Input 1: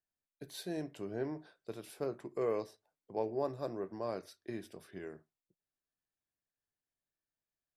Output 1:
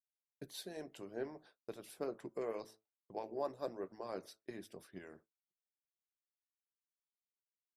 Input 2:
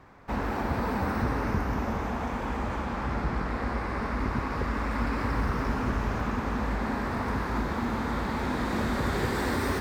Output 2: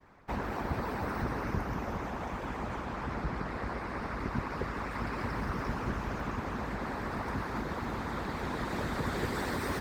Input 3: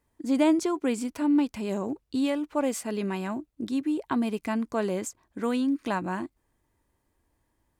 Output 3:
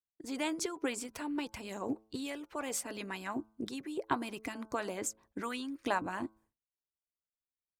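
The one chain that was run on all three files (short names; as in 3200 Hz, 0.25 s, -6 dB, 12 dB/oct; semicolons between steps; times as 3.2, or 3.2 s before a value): de-hum 109.3 Hz, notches 14; harmonic-percussive split harmonic -15 dB; expander -58 dBFS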